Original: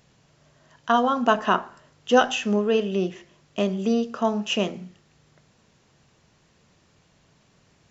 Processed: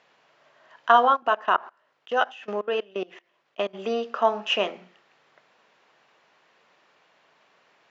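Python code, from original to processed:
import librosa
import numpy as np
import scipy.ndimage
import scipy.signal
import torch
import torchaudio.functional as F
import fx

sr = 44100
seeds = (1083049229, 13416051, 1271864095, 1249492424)

y = fx.level_steps(x, sr, step_db=23, at=(1.15, 3.73), fade=0.02)
y = fx.bandpass_edges(y, sr, low_hz=620.0, high_hz=2800.0)
y = F.gain(torch.from_numpy(y), 5.5).numpy()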